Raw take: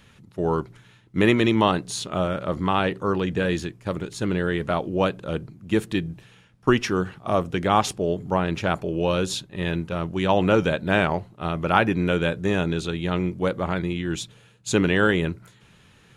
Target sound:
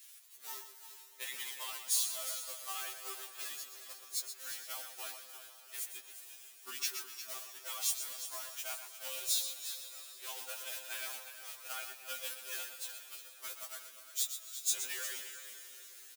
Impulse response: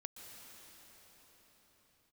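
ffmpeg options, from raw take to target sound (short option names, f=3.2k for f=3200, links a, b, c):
-filter_complex "[0:a]aeval=exprs='val(0)+0.5*0.0841*sgn(val(0))':c=same,highpass=400,highshelf=f=3.4k:g=5,agate=range=-22dB:threshold=-21dB:ratio=16:detection=peak,acompressor=threshold=-22dB:ratio=4,aderivative,aecho=1:1:355:0.266,asplit=2[a][b];[1:a]atrim=start_sample=2205,adelay=123[c];[b][c]afir=irnorm=-1:irlink=0,volume=-3dB[d];[a][d]amix=inputs=2:normalize=0,afftfilt=real='re*2.45*eq(mod(b,6),0)':imag='im*2.45*eq(mod(b,6),0)':win_size=2048:overlap=0.75,volume=-3.5dB"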